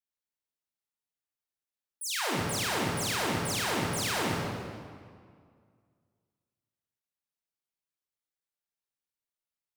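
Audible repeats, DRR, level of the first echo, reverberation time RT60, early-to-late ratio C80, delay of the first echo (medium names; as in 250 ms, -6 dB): no echo, -3.5 dB, no echo, 2.0 s, 0.5 dB, no echo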